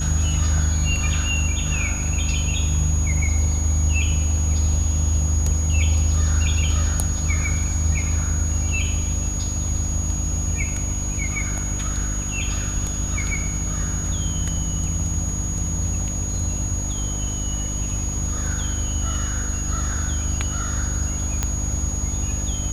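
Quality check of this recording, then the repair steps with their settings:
mains hum 50 Hz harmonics 6 −27 dBFS
whistle 6,700 Hz −28 dBFS
0:21.43: click −8 dBFS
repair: click removal
notch filter 6,700 Hz, Q 30
hum removal 50 Hz, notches 6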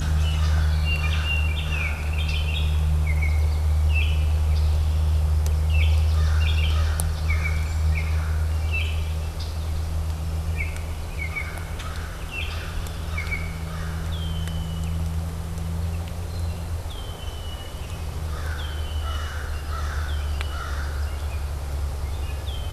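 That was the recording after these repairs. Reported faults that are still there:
none of them is left

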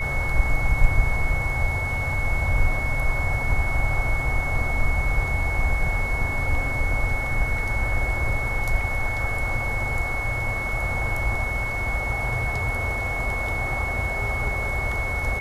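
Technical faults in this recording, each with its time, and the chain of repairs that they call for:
whistle 2,200 Hz −27 dBFS
0:08.81: drop-out 2 ms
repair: notch filter 2,200 Hz, Q 30
repair the gap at 0:08.81, 2 ms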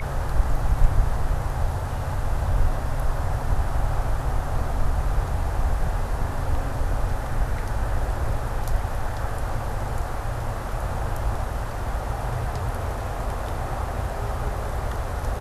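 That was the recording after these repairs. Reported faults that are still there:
none of them is left

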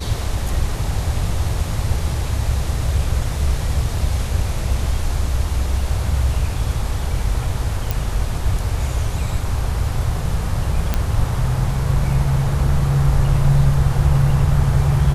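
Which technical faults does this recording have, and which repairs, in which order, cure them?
0:07.91: click
0:10.94: click −4 dBFS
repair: click removal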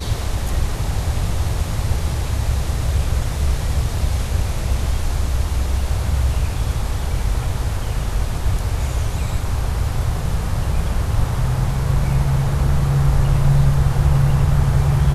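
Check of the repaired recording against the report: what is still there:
none of them is left

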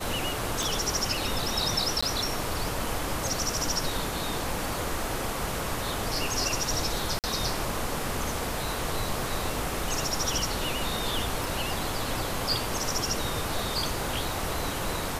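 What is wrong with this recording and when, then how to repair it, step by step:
surface crackle 27 per second −37 dBFS
0:00.63: click
0:02.01–0:02.02: drop-out 15 ms
0:07.19–0:07.24: drop-out 48 ms
0:11.44: click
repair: click removal
repair the gap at 0:02.01, 15 ms
repair the gap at 0:07.19, 48 ms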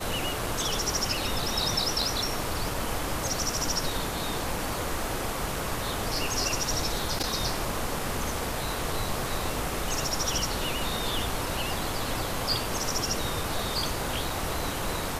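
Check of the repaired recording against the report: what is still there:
0:00.63: click
0:11.44: click

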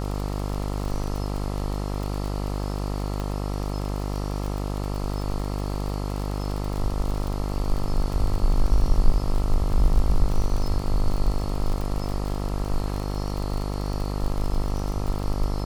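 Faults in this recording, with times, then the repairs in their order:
mains buzz 50 Hz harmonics 27 −28 dBFS
surface crackle 43 per second −27 dBFS
0:03.20: click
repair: click removal
hum removal 50 Hz, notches 27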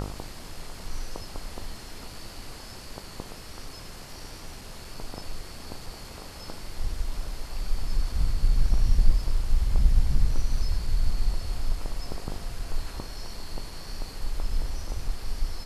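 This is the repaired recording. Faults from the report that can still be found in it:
none of them is left

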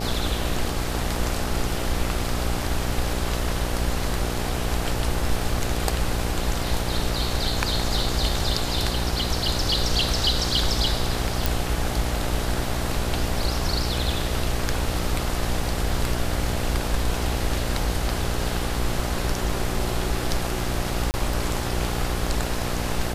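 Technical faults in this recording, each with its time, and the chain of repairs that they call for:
mains buzz 60 Hz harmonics 14 −29 dBFS
0:11.46: click
0:21.11–0:21.14: drop-out 29 ms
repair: click removal
hum removal 60 Hz, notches 14
repair the gap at 0:21.11, 29 ms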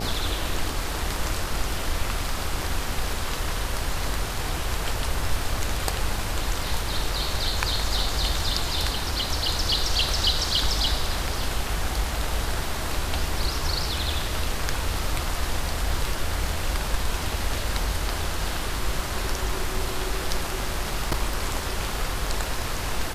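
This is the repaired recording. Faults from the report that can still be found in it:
none of them is left

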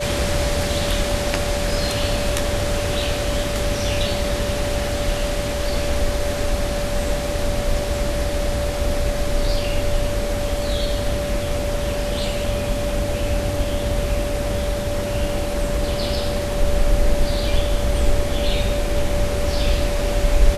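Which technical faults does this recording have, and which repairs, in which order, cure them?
whistle 580 Hz −25 dBFS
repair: notch filter 580 Hz, Q 30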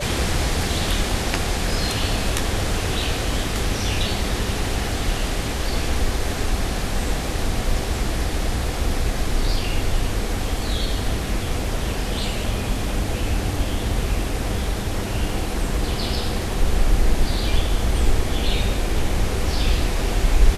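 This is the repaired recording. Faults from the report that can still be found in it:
none of them is left

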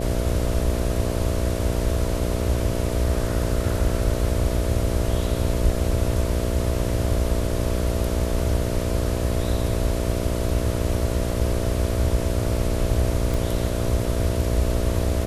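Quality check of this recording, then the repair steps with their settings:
mains buzz 60 Hz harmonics 11 −27 dBFS
0:13.34: click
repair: click removal
hum removal 60 Hz, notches 11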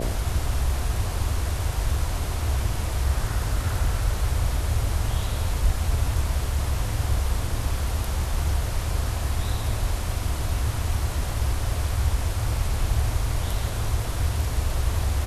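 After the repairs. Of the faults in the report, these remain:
none of them is left

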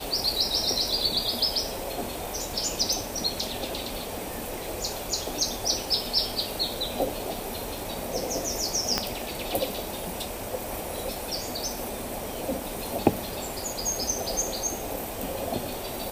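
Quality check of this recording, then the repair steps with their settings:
surface crackle 53 per second −37 dBFS
0:08.98: click −7 dBFS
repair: click removal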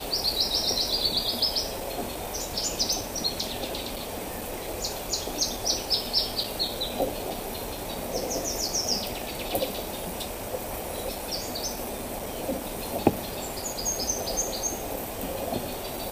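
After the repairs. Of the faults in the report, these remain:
0:08.98: click

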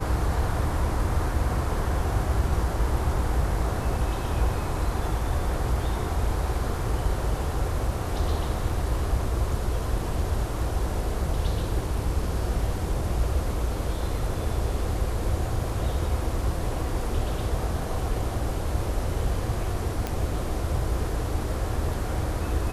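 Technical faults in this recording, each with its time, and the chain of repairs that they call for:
0:20.07: click −14 dBFS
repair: click removal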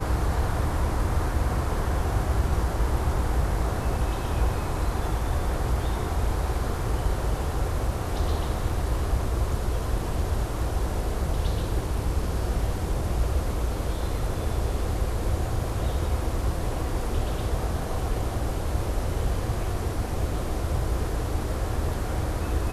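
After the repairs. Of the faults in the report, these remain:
none of them is left

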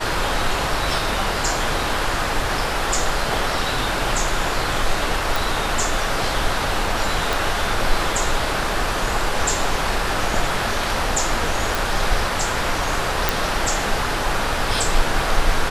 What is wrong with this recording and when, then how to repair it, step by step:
0:05.36: click
0:07.33: click
0:11.75: click
0:13.29: click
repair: click removal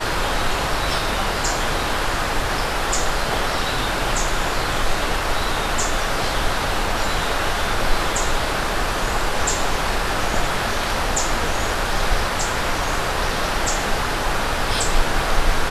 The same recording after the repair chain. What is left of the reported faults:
0:07.33: click

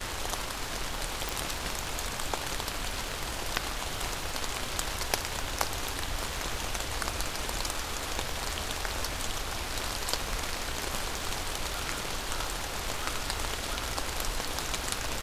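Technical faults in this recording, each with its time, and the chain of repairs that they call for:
surface crackle 45 per second −38 dBFS
0:01.29: click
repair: click removal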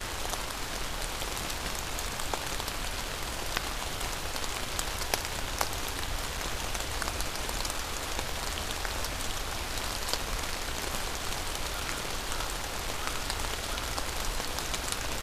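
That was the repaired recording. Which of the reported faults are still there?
none of them is left

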